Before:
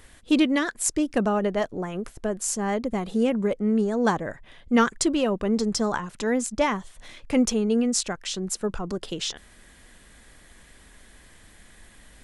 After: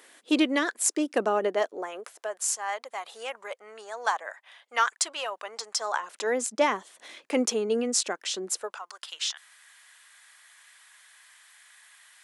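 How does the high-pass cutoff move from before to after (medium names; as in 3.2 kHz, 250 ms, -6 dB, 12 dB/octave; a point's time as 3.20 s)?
high-pass 24 dB/octave
1.48 s 310 Hz
2.51 s 740 Hz
5.74 s 740 Hz
6.47 s 300 Hz
8.45 s 300 Hz
8.87 s 1 kHz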